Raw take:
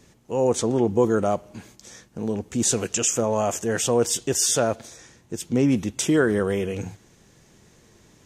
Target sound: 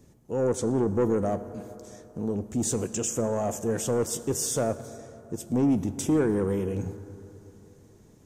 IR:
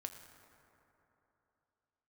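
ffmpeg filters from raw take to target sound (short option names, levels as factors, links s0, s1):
-filter_complex "[0:a]equalizer=f=2800:w=0.35:g=-13,asoftclip=type=tanh:threshold=0.126,asplit=2[s0][s1];[1:a]atrim=start_sample=2205[s2];[s1][s2]afir=irnorm=-1:irlink=0,volume=1.5[s3];[s0][s3]amix=inputs=2:normalize=0,volume=0.531"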